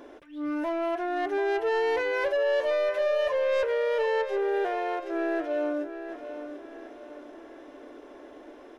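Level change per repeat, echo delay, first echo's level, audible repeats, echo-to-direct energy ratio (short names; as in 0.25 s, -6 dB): -7.5 dB, 0.738 s, -10.5 dB, 4, -9.5 dB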